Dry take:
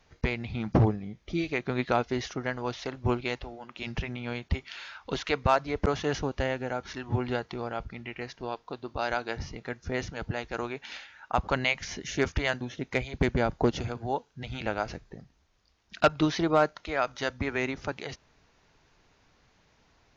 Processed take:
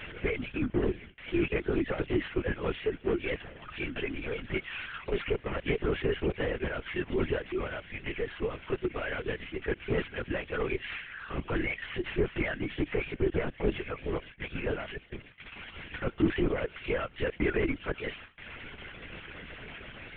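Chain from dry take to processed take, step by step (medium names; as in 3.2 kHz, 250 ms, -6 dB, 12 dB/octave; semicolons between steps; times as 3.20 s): one-bit delta coder 16 kbps, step -39.5 dBFS; high-pass 190 Hz 24 dB/octave; hum notches 60/120/180/240 Hz; reverb removal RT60 1.6 s; harmonic-percussive split harmonic -3 dB; in parallel at 0 dB: compressor with a negative ratio -35 dBFS, ratio -0.5; on the sum: static phaser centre 330 Hz, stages 4; feedback echo behind a high-pass 964 ms, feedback 48%, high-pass 2.2 kHz, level -10 dB; gate with hold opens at -39 dBFS; LPC vocoder at 8 kHz whisper; trim +3.5 dB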